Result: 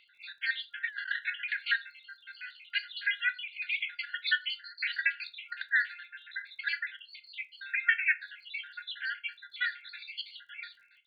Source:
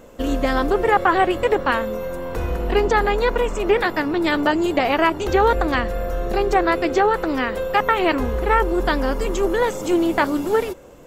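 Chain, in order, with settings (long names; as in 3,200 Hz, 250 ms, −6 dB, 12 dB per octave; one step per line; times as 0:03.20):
time-frequency cells dropped at random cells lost 65%
convolution reverb RT60 0.30 s, pre-delay 6 ms, DRR 9 dB
brick-wall band-pass 1,400–4,700 Hz
0:00.85–0:01.42: compressor whose output falls as the input rises −34 dBFS, ratio −0.5
surface crackle 38 per second −60 dBFS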